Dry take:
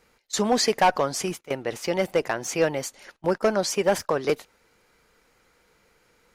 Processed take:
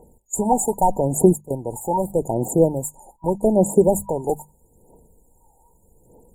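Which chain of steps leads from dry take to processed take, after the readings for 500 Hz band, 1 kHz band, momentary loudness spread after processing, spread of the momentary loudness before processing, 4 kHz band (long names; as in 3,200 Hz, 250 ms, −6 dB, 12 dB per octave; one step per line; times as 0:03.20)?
+4.5 dB, +3.0 dB, 12 LU, 9 LU, below −40 dB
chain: mains-hum notches 50/100/150/200 Hz
phase shifter 0.81 Hz, delay 1.3 ms, feedback 78%
brick-wall band-stop 970–6,800 Hz
level +5 dB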